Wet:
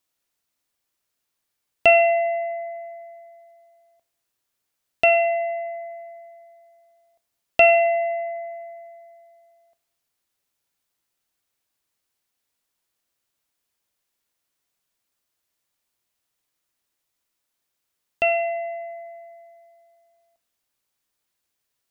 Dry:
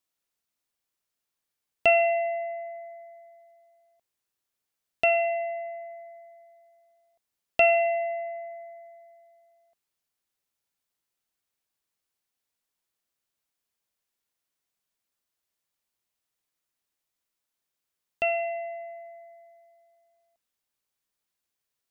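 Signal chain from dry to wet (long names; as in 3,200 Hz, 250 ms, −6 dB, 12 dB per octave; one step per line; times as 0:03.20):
coupled-rooms reverb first 0.62 s, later 1.7 s, from −25 dB, DRR 13.5 dB
level +5.5 dB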